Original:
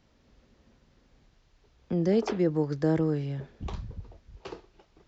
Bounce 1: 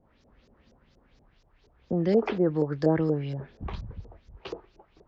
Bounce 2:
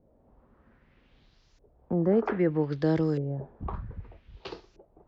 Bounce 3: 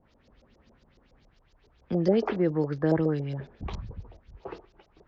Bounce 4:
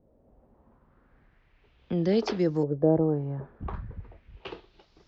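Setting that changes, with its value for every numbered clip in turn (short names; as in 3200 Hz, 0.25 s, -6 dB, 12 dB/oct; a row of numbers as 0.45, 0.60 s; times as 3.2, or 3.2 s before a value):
LFO low-pass, rate: 4.2, 0.63, 7.2, 0.38 Hz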